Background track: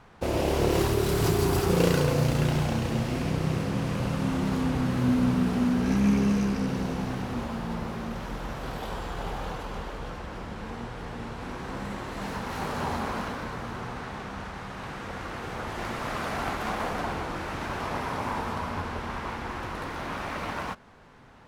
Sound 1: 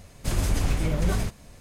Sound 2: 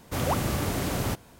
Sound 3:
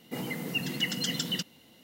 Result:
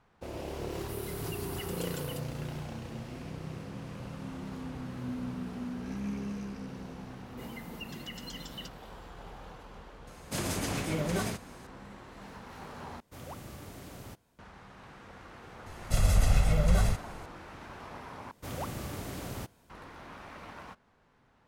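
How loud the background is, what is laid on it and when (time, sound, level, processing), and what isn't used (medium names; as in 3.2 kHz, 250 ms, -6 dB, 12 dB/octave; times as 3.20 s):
background track -13.5 dB
0.77 s: add 3 -14.5 dB + resonant high shelf 7.6 kHz +11.5 dB, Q 3
7.26 s: add 3 -10.5 dB + peak limiter -22.5 dBFS
10.07 s: add 1 -1.5 dB + high-pass 160 Hz
13.00 s: replace with 2 -18 dB
15.66 s: add 1 -4.5 dB + comb 1.5 ms, depth 92%
18.31 s: replace with 2 -11 dB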